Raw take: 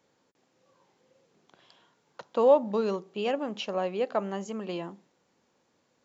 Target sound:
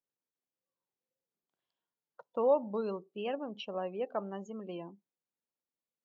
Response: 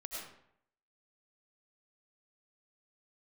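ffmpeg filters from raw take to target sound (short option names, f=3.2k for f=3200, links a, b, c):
-af "afftdn=nr=24:nf=-39,volume=-7dB"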